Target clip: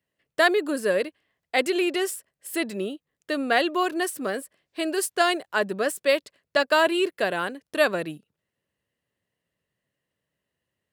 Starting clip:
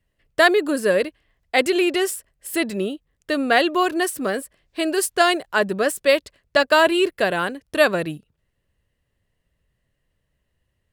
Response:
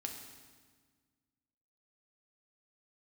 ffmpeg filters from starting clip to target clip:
-af "highpass=170,volume=-4.5dB"

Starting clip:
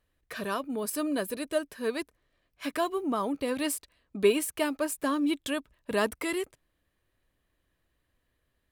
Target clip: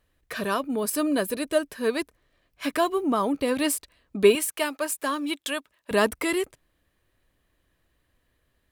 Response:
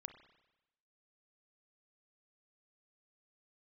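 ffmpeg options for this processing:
-filter_complex "[0:a]asettb=1/sr,asplit=3[link_01][link_02][link_03];[link_01]atrim=end=4.354[link_04];[link_02]atrim=start=4.35:end=5.91,asetpts=PTS-STARTPTS,afade=type=in:duration=0.004:curve=qsin,afade=type=out:start_time=1.556:duration=0.004:curve=qsin,highpass=frequency=750:poles=1[link_05];[link_03]atrim=start=5.906[link_06];[link_04][link_05]acrossfade=duration=0.004:curve1=hsin:curve2=qsin[link_07];[link_07][link_06]acrossfade=duration=0.004:curve1=qsin:curve2=hsin,volume=5.5dB"

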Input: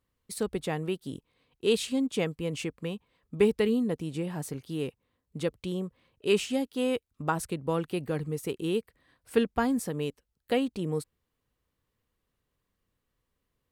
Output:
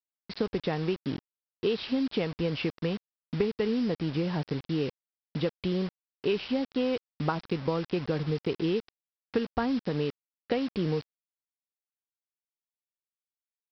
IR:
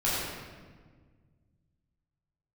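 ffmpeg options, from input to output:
-af "highshelf=frequency=2600:gain=-4.5,acompressor=threshold=-31dB:ratio=8,aresample=11025,acrusher=bits=7:mix=0:aa=0.000001,aresample=44100,volume=6.5dB"

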